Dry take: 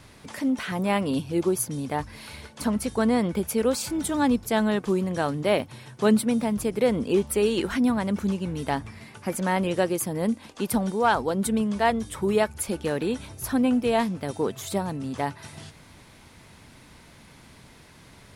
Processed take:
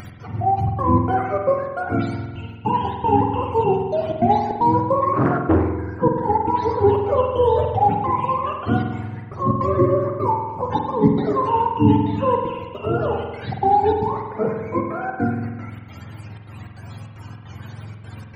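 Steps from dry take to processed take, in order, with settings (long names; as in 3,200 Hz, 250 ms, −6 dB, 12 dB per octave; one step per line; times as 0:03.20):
frequency axis turned over on the octave scale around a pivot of 450 Hz
upward compression, threshold −38 dBFS
gate pattern "x.xxxxx.xx.xxx.x" 153 BPM −60 dB
spring reverb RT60 1.3 s, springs 47 ms, chirp 65 ms, DRR 2.5 dB
0:05.13–0:05.74: highs frequency-modulated by the lows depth 0.53 ms
level +6.5 dB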